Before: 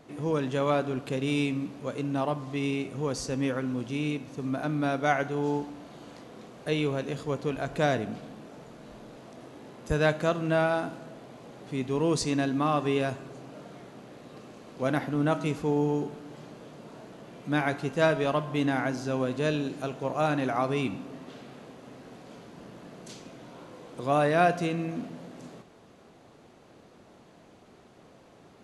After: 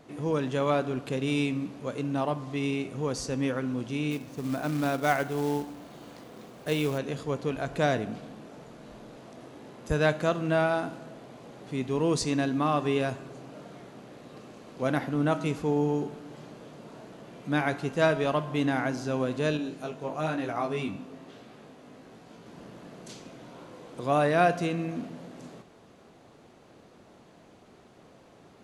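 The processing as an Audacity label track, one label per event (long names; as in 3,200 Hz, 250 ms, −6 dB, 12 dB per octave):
4.110000	6.980000	floating-point word with a short mantissa of 2 bits
19.570000	22.460000	chorus effect 1.1 Hz, delay 17.5 ms, depth 2.5 ms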